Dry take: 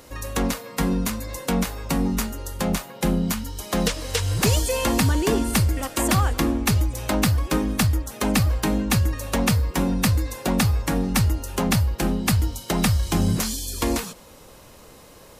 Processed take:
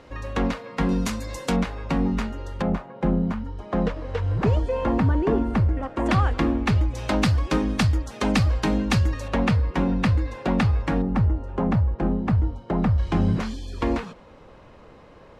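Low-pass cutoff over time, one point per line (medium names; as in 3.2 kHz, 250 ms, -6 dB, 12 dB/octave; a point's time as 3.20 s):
2.9 kHz
from 0.89 s 7 kHz
from 1.56 s 2.8 kHz
from 2.62 s 1.3 kHz
from 6.06 s 2.8 kHz
from 6.94 s 4.9 kHz
from 9.28 s 2.6 kHz
from 11.02 s 1.1 kHz
from 12.98 s 2.2 kHz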